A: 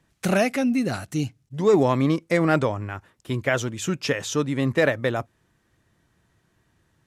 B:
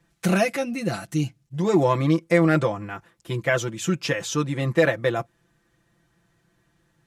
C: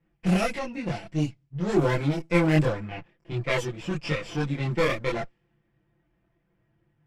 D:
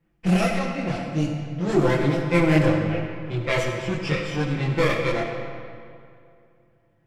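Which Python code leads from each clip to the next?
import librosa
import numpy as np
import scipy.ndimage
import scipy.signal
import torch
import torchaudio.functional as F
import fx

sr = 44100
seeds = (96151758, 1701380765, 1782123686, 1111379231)

y1 = x + 0.82 * np.pad(x, (int(5.9 * sr / 1000.0), 0))[:len(x)]
y1 = y1 * 10.0 ** (-2.0 / 20.0)
y2 = fx.lower_of_two(y1, sr, delay_ms=0.38)
y2 = fx.env_lowpass(y2, sr, base_hz=1800.0, full_db=-16.0)
y2 = fx.chorus_voices(y2, sr, voices=4, hz=0.46, base_ms=24, depth_ms=4.6, mix_pct=55)
y3 = fx.rev_freeverb(y2, sr, rt60_s=2.4, hf_ratio=0.7, predelay_ms=15, drr_db=3.0)
y3 = y3 * 10.0 ** (2.0 / 20.0)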